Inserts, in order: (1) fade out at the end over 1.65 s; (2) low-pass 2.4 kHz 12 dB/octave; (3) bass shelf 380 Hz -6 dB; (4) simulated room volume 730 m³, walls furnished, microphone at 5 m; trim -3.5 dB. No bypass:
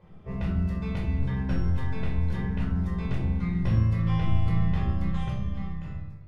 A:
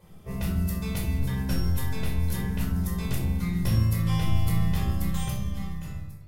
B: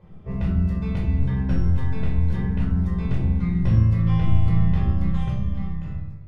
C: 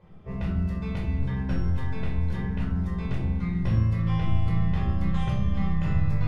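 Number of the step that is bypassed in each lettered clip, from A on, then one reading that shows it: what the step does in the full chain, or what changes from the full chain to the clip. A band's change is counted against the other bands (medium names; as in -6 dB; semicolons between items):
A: 2, 4 kHz band +8.0 dB; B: 3, 125 Hz band +4.0 dB; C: 1, momentary loudness spread change -4 LU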